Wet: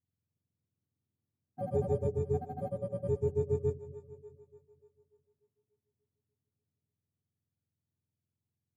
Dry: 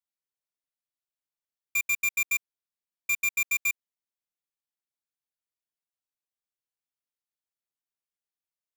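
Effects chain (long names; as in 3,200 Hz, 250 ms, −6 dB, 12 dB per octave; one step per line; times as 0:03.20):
frequency axis turned over on the octave scale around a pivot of 1,000 Hz
echo with a time of its own for lows and highs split 370 Hz, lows 218 ms, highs 294 ms, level −15 dB
delay with pitch and tempo change per echo 302 ms, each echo +5 semitones, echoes 2, each echo −6 dB
level −3 dB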